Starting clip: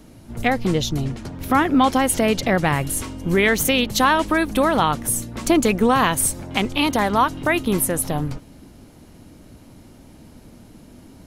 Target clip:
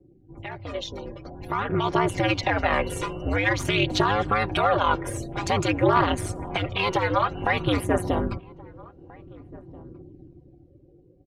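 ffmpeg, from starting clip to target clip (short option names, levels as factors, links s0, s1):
-filter_complex "[0:a]aeval=exprs='0.631*(cos(1*acos(clip(val(0)/0.631,-1,1)))-cos(1*PI/2))+0.0282*(cos(8*acos(clip(val(0)/0.631,-1,1)))-cos(8*PI/2))':c=same,aecho=1:1:4.6:0.58,afftdn=nr=31:nf=-39,acrossover=split=150|590[s0][s1][s2];[s0]acompressor=threshold=0.0398:ratio=4[s3];[s1]acompressor=threshold=0.0447:ratio=4[s4];[s2]acompressor=threshold=0.0708:ratio=4[s5];[s3][s4][s5]amix=inputs=3:normalize=0,alimiter=limit=0.188:level=0:latency=1:release=72,lowpass=5100,dynaudnorm=f=360:g=9:m=4.73,aeval=exprs='val(0)*sin(2*PI*100*n/s)':c=same,aphaser=in_gain=1:out_gain=1:delay=2.2:decay=0.44:speed=0.5:type=triangular,bass=f=250:g=-8,treble=f=4000:g=-4,asplit=2[s6][s7];[s7]adelay=1633,volume=0.0794,highshelf=f=4000:g=-36.7[s8];[s6][s8]amix=inputs=2:normalize=0,volume=0.531"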